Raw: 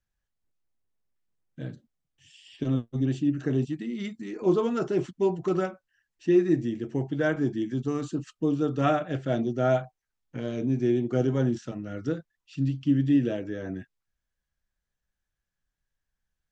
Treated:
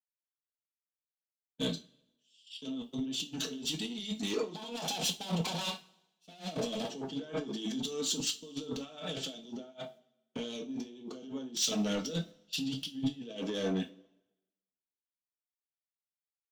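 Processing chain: 4.55–6.90 s: comb filter that takes the minimum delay 1.2 ms; Bessel high-pass 260 Hz, order 4; gate -49 dBFS, range -20 dB; resonant high shelf 2.5 kHz +10.5 dB, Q 3; comb 4.6 ms, depth 48%; compressor with a negative ratio -38 dBFS, ratio -1; saturation -30 dBFS, distortion -14 dB; reverberation, pre-delay 3 ms, DRR 4.5 dB; three bands expanded up and down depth 100%

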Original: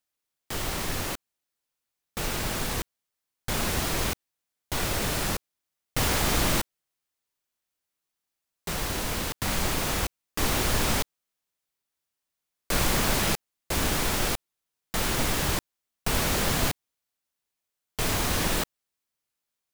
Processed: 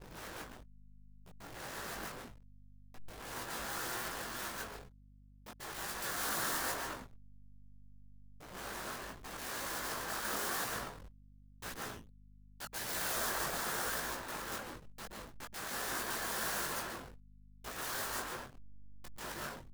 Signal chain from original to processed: slices played last to first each 140 ms, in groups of 6; frequency shift +61 Hz; resonant high shelf 1.9 kHz -7 dB, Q 3; gate -56 dBFS, range -28 dB; spectral gate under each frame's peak -10 dB weak; reverse; upward compressor, threshold -39 dBFS; reverse; pre-emphasis filter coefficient 0.8; plate-style reverb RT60 2.4 s, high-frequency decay 0.5×, pre-delay 105 ms, DRR -5 dB; hysteresis with a dead band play -28.5 dBFS; chorus voices 4, 0.92 Hz, delay 20 ms, depth 4.4 ms; hum 50 Hz, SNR 18 dB; trim +1 dB

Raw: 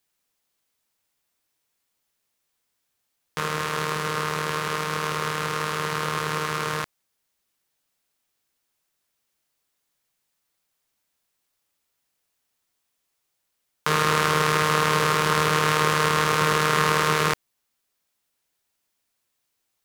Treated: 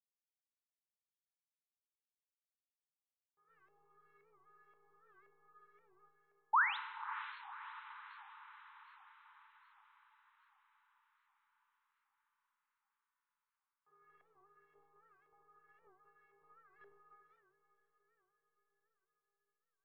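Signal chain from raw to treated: gate -15 dBFS, range -36 dB; treble shelf 3.1 kHz -12 dB; 3.48–6.09 s: waveshaping leveller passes 3; inharmonic resonator 400 Hz, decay 0.56 s, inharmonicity 0.008; 6.53–6.77 s: painted sound rise 810–4200 Hz -39 dBFS; LFO low-pass saw up 1.9 Hz 630–2300 Hz; echo that smears into a reverb 551 ms, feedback 59%, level -12 dB; FDN reverb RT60 1.5 s, high-frequency decay 0.8×, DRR 8.5 dB; warped record 78 rpm, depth 160 cents; trim +4 dB

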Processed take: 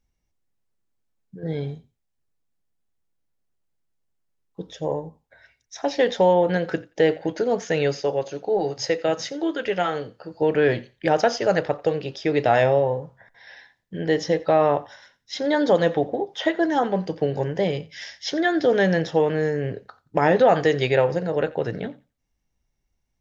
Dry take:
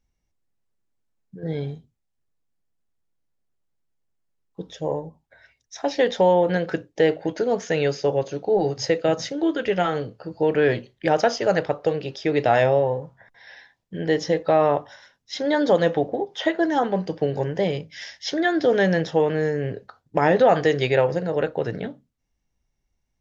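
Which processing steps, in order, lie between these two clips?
8.01–10.42 s: bass shelf 260 Hz -8 dB; thinning echo 88 ms, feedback 19%, high-pass 670 Hz, level -20 dB

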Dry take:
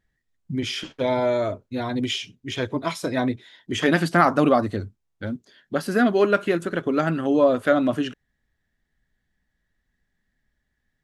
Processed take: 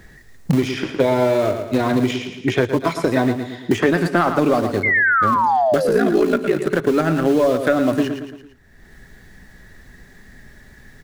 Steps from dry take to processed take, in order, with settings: graphic EQ with 31 bands 125 Hz +3 dB, 400 Hz +6 dB, 3.15 kHz -6 dB; in parallel at -7.5 dB: small samples zeroed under -23.5 dBFS; 5.88–6.71 s: on the sum: ring modulator 28 Hz; saturation -4.5 dBFS, distortion -21 dB; 4.83–6.39 s: painted sound fall 230–2200 Hz -21 dBFS; on a send: feedback delay 112 ms, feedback 32%, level -10 dB; on the sum: three bands compressed up and down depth 100%

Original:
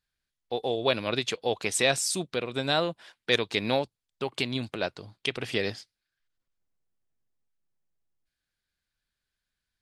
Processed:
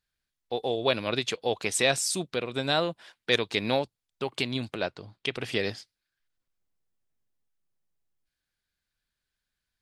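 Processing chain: 4.83–5.33 s: treble shelf 7.1 kHz -11 dB

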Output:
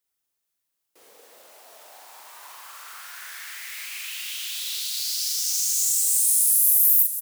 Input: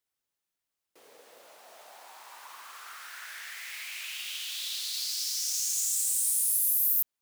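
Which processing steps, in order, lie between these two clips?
treble shelf 6.9 kHz +7.5 dB; doubling 41 ms -3 dB; feedback delay 499 ms, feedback 35%, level -11 dB

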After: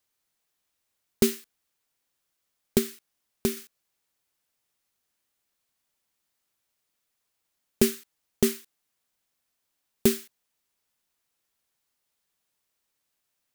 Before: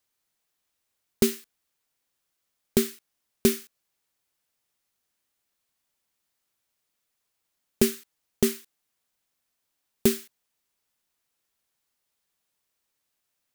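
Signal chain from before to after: 2.78–3.57 s: compression 2:1, threshold -26 dBFS, peak gain reduction 6.5 dB

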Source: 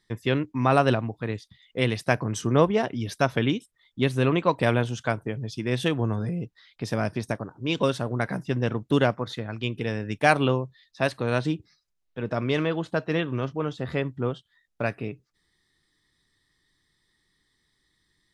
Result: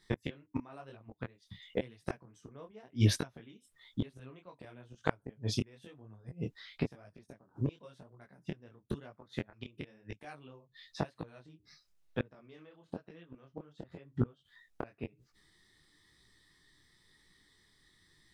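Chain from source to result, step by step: inverted gate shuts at -20 dBFS, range -34 dB; detune thickener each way 34 cents; trim +7.5 dB

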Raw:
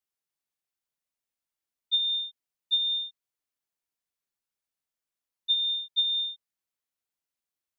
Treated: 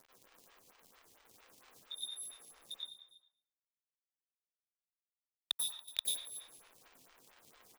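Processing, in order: local Wiener filter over 15 samples; spectral gate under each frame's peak -15 dB weak; in parallel at +2 dB: peak limiter -49 dBFS, peak gain reduction 10.5 dB; on the sum: crackle 150 per s -53 dBFS; 2.74–6.13 s: companded quantiser 2-bit; delay 282 ms -17.5 dB; plate-style reverb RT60 0.76 s, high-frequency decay 0.7×, pre-delay 80 ms, DRR -4 dB; lamp-driven phase shifter 4.4 Hz; trim +10 dB

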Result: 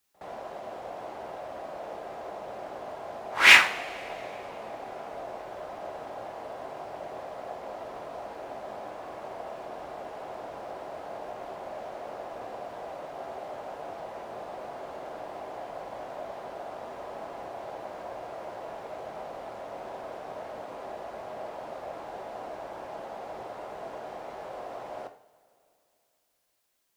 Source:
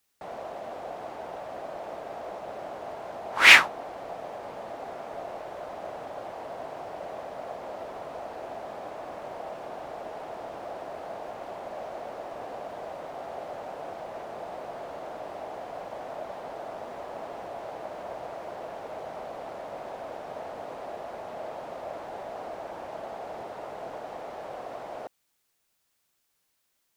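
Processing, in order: pre-echo 66 ms -21.5 dB; two-slope reverb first 0.46 s, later 3 s, from -20 dB, DRR 5.5 dB; trim -2 dB

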